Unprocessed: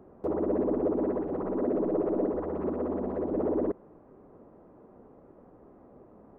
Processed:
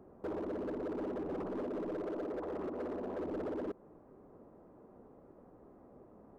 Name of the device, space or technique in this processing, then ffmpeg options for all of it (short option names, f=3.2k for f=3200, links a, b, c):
limiter into clipper: -filter_complex "[0:a]asettb=1/sr,asplit=3[a][b][c];[a]atrim=end=2.064[d];[b]atrim=start=2.06:end=3.2,asetpts=PTS-STARTPTS,afade=t=in:d=0.004:c=qsin,afade=t=out:st=1.136:d=0.004:c=qsin,bass=f=250:g=-8,treble=f=4k:g=2[e];[c]atrim=start=3.196[f];[d][e]acrossfade=d=0.004:c1=hsin:c2=qsin[g];[g][f]acrossfade=d=0.004:c1=qsin:c2=hsin,alimiter=level_in=1dB:limit=-24dB:level=0:latency=1:release=161,volume=-1dB,asoftclip=type=hard:threshold=-31dB,volume=-4dB"